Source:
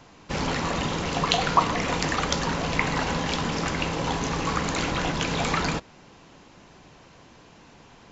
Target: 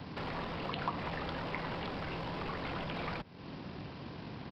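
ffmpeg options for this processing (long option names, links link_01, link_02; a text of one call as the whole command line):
ffmpeg -i in.wav -filter_complex "[0:a]atempo=1.8,highpass=81,lowshelf=frequency=300:gain=11,acompressor=threshold=-35dB:ratio=6,aresample=11025,acrusher=bits=3:mode=log:mix=0:aa=0.000001,aresample=44100,acrossover=split=3500[link_01][link_02];[link_02]acompressor=threshold=-59dB:ratio=4:attack=1:release=60[link_03];[link_01][link_03]amix=inputs=2:normalize=0,acrossover=split=610|1400[link_04][link_05][link_06];[link_04]aeval=exprs='0.0119*(abs(mod(val(0)/0.0119+3,4)-2)-1)':channel_layout=same[link_07];[link_07][link_05][link_06]amix=inputs=3:normalize=0,volume=2dB" out.wav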